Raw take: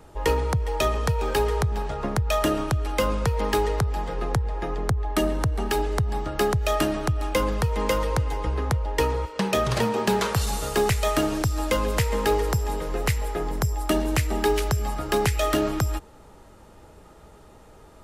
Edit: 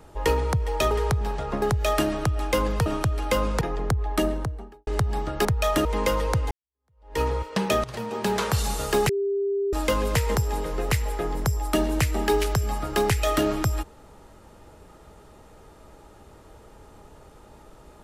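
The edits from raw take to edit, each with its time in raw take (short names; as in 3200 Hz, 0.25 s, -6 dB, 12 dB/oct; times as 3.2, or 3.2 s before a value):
0.91–1.42 cut
2.13–2.53 swap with 6.44–7.68
3.28–4.6 cut
5.11–5.86 studio fade out
8.34–9.04 fade in exponential
9.67–10.32 fade in, from -17.5 dB
10.92–11.56 bleep 398 Hz -22 dBFS
12.18–12.51 cut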